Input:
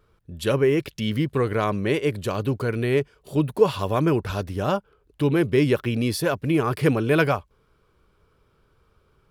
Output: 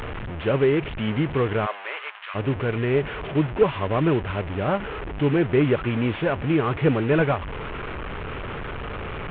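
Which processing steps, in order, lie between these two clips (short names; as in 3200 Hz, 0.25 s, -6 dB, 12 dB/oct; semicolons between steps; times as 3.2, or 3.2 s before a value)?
delta modulation 16 kbps, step -25.5 dBFS; 1.65–2.34 HPF 540 Hz -> 1200 Hz 24 dB/oct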